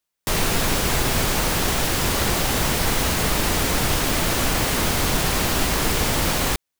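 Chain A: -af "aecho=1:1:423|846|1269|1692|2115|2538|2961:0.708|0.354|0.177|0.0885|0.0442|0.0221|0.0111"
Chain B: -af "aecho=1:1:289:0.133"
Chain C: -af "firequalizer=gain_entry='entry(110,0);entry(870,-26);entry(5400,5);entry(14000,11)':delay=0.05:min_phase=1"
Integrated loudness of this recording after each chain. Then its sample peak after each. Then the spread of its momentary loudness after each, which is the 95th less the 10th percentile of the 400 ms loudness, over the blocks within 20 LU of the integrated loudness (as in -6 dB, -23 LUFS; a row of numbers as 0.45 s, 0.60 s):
-18.5 LUFS, -20.5 LUFS, -15.5 LUFS; -5.0 dBFS, -7.5 dBFS, -4.5 dBFS; 1 LU, 0 LU, 0 LU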